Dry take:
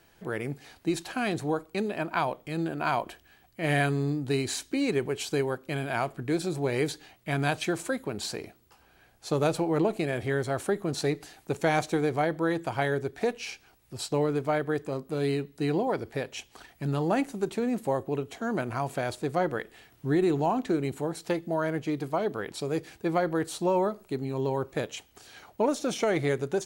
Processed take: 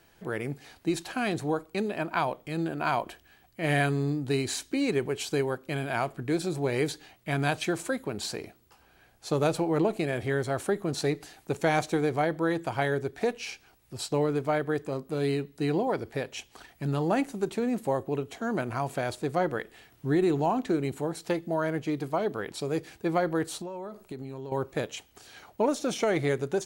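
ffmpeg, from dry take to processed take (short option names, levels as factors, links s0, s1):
-filter_complex "[0:a]asettb=1/sr,asplit=3[s0][s1][s2];[s0]atrim=end=23.614[s3];[s1]atrim=start=23.61:end=24.52,asetpts=PTS-STARTPTS,afade=t=in:d=0.004:c=qsin,afade=t=out:st=0.906:d=0.004:c=qsin,acompressor=threshold=0.02:ratio=10:attack=3.2:release=140:knee=1:detection=peak[s4];[s2]atrim=start=24.516[s5];[s3][s4]acrossfade=d=0.004:c1=hsin:c2=qsin[s6];[s6][s5]acrossfade=d=0.004:c1=qsin:c2=hsin"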